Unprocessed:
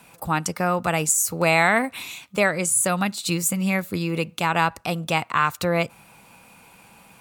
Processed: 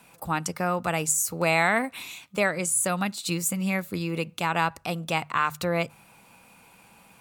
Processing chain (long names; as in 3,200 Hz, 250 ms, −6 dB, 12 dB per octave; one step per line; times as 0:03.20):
mains-hum notches 50/100/150 Hz
level −4 dB